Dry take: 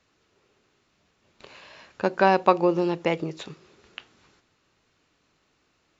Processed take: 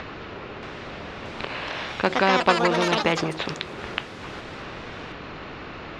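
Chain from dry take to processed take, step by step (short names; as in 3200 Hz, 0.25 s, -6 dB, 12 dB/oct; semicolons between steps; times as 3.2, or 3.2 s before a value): upward compressor, threshold -40 dBFS; air absorption 350 m; echoes that change speed 0.629 s, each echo +5 st, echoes 3, each echo -6 dB; spectral compressor 2:1; gain -1 dB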